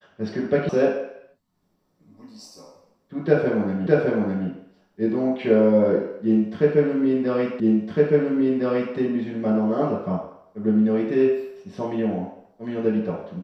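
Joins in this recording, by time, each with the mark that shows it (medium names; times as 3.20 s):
0.69 s: sound stops dead
3.87 s: repeat of the last 0.61 s
7.60 s: repeat of the last 1.36 s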